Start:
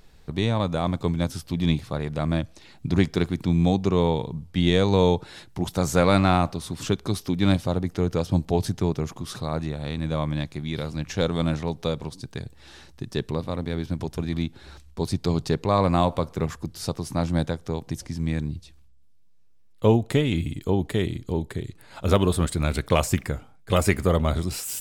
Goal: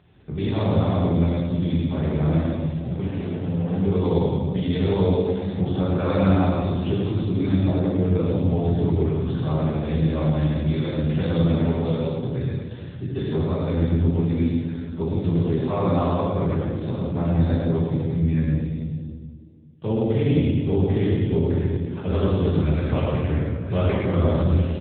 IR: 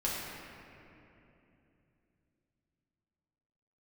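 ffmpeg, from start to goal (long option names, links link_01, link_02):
-filter_complex "[0:a]lowshelf=frequency=110:gain=6.5,alimiter=limit=-15dB:level=0:latency=1:release=196,asettb=1/sr,asplit=3[link_01][link_02][link_03];[link_01]atrim=end=2.374[link_04];[link_02]atrim=start=2.37:end=3.76,asetpts=PTS-STARTPTS,afade=type=in:duration=0.004:curve=qsin,afade=type=out:start_time=1.386:duration=0.004:curve=qsin,asoftclip=type=hard:threshold=-27dB[link_05];[link_03]atrim=start=3.756[link_06];[link_04][link_05]acrossfade=duration=0.004:curve1=hsin:curve2=qsin[link_07];[link_07][link_06]acrossfade=duration=0.004:curve1=qsin:curve2=hsin,aecho=1:1:105|210|315:0.668|0.114|0.0193[link_08];[1:a]atrim=start_sample=2205,asetrate=79380,aresample=44100[link_09];[link_08][link_09]afir=irnorm=-1:irlink=0,volume=2dB" -ar 8000 -c:a libopencore_amrnb -b:a 7950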